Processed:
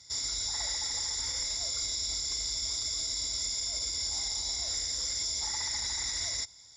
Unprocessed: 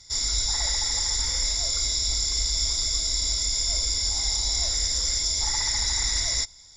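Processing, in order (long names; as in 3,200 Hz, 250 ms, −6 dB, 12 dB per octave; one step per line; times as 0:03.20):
high-pass filter 86 Hz 12 dB per octave
brickwall limiter −20 dBFS, peak gain reduction 7 dB
level −4 dB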